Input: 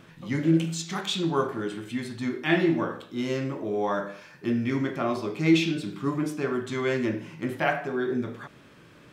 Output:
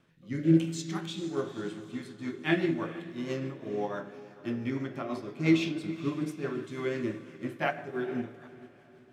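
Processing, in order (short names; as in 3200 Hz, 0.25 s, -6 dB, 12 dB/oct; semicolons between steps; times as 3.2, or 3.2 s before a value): rotary speaker horn 1 Hz, later 6 Hz, at 1.53; diffused feedback echo 0.454 s, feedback 52%, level -12.5 dB; on a send at -13 dB: reverb RT60 3.0 s, pre-delay 4 ms; on the sum: upward expander 1.5:1, over -42 dBFS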